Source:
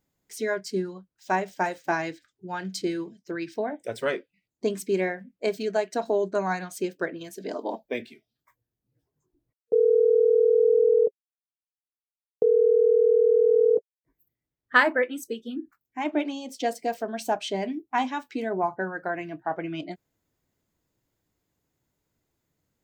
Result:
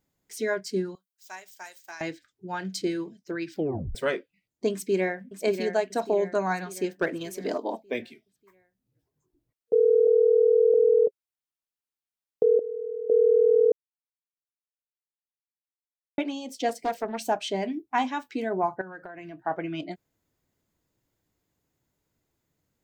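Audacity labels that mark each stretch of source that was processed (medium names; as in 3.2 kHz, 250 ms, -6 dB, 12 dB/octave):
0.950000	2.010000	differentiator
3.510000	3.510000	tape stop 0.44 s
4.720000	5.300000	echo throw 590 ms, feedback 50%, level -8 dB
7.010000	7.580000	waveshaping leveller passes 1
10.070000	10.740000	low-pass 1.4 kHz 24 dB/octave
12.590000	13.100000	pre-emphasis filter coefficient 0.8
13.720000	16.180000	mute
16.690000	17.180000	loudspeaker Doppler distortion depth 0.32 ms
18.810000	19.400000	compression 12:1, threshold -37 dBFS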